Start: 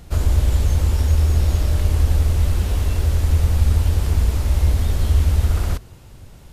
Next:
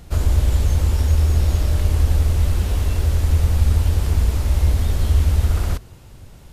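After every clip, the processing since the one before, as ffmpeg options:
-af anull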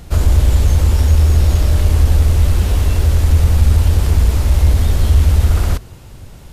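-af "asoftclip=type=tanh:threshold=0.531,volume=2"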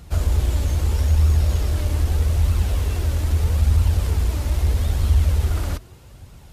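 -af "flanger=delay=0.7:depth=2.9:regen=61:speed=0.79:shape=triangular,highpass=43,volume=0.75"

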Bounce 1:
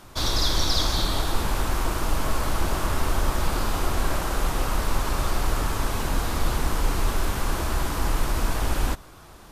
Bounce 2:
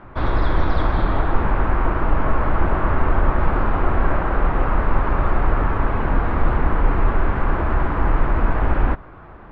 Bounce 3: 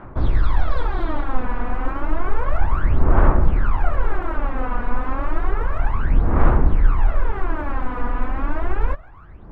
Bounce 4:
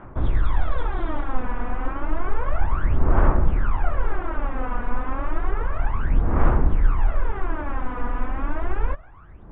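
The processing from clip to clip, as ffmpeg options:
-af "lowpass=f=2000:w=0.5412,lowpass=f=2000:w=1.3066,volume=2.11"
-af "aphaser=in_gain=1:out_gain=1:delay=4.1:decay=0.74:speed=0.31:type=sinusoidal,volume=0.398"
-af "aresample=8000,aresample=44100,volume=0.708"

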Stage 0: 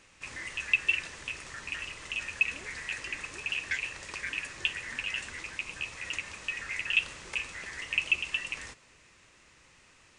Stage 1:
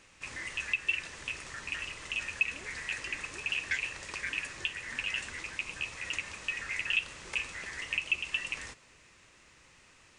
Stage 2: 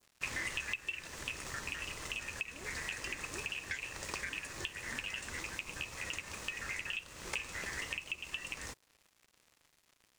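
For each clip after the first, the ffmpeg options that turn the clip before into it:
-af "alimiter=limit=0.15:level=0:latency=1:release=338"
-af "aeval=exprs='sgn(val(0))*max(abs(val(0))-0.00188,0)':c=same,acompressor=threshold=0.0126:ratio=6,adynamicequalizer=threshold=0.00178:dfrequency=2400:dqfactor=0.8:tfrequency=2400:tqfactor=0.8:attack=5:release=100:ratio=0.375:range=3:mode=cutabove:tftype=bell,volume=2.11"

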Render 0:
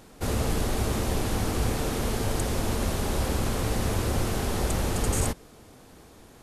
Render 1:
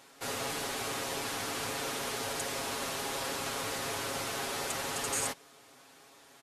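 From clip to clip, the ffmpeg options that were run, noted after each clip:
-af "highpass=f=1300:p=1,highshelf=f=7300:g=-6,aecho=1:1:7.3:0.68"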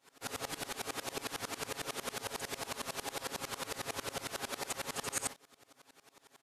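-af "aeval=exprs='val(0)*pow(10,-24*if(lt(mod(-11*n/s,1),2*abs(-11)/1000),1-mod(-11*n/s,1)/(2*abs(-11)/1000),(mod(-11*n/s,1)-2*abs(-11)/1000)/(1-2*abs(-11)/1000))/20)':c=same,volume=1.26"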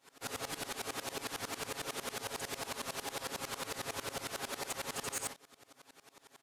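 -af "asoftclip=type=tanh:threshold=0.0211,volume=1.26"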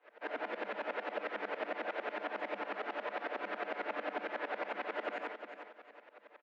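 -af "aecho=1:1:358|716|1074:0.355|0.106|0.0319,afreqshift=190,highpass=100,equalizer=f=160:t=q:w=4:g=8,equalizer=f=550:t=q:w=4:g=5,equalizer=f=1100:t=q:w=4:g=-6,lowpass=f=2300:w=0.5412,lowpass=f=2300:w=1.3066,volume=1.5"

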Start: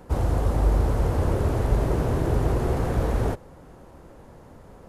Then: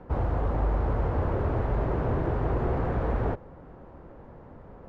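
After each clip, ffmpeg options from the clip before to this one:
-filter_complex "[0:a]lowpass=1900,acrossover=split=640[s0][s1];[s0]alimiter=limit=0.106:level=0:latency=1:release=126[s2];[s2][s1]amix=inputs=2:normalize=0"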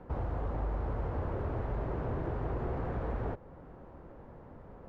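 -af "acompressor=threshold=0.0178:ratio=1.5,volume=0.668"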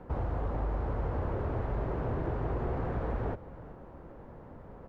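-af "aecho=1:1:382:0.133,volume=1.26"

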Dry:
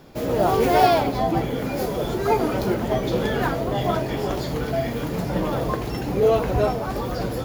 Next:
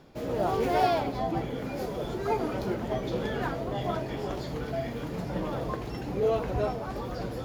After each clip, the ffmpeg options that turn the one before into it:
-af "highshelf=f=11000:g=-12,areverse,acompressor=mode=upward:threshold=0.0355:ratio=2.5,areverse,volume=0.398"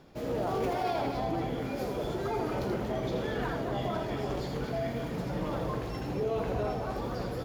-filter_complex "[0:a]alimiter=limit=0.0668:level=0:latency=1:release=13,asplit=2[s0][s1];[s1]aecho=0:1:81|232:0.501|0.376[s2];[s0][s2]amix=inputs=2:normalize=0,volume=0.841"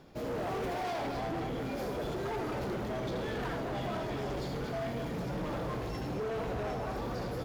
-af "asoftclip=type=hard:threshold=0.0237"

